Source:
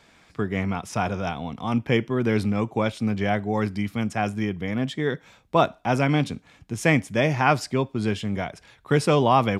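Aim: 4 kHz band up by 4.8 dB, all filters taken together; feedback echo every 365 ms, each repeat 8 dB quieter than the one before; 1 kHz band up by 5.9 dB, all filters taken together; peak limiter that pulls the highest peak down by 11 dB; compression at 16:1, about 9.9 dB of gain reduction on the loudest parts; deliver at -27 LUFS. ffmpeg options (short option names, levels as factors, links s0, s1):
-af "equalizer=f=1000:t=o:g=7.5,equalizer=f=4000:t=o:g=6,acompressor=threshold=0.126:ratio=16,alimiter=limit=0.141:level=0:latency=1,aecho=1:1:365|730|1095|1460|1825:0.398|0.159|0.0637|0.0255|0.0102,volume=1.19"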